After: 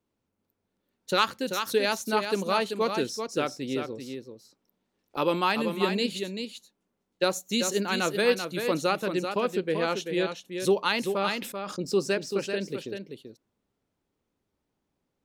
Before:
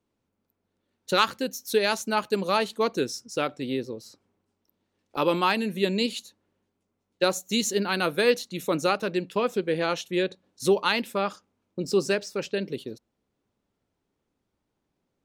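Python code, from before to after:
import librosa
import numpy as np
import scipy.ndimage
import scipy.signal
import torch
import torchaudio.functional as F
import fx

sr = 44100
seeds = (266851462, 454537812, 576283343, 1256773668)

y = x + 10.0 ** (-7.0 / 20.0) * np.pad(x, (int(387 * sr / 1000.0), 0))[:len(x)]
y = fx.sustainer(y, sr, db_per_s=66.0, at=(11.21, 11.79))
y = F.gain(torch.from_numpy(y), -2.0).numpy()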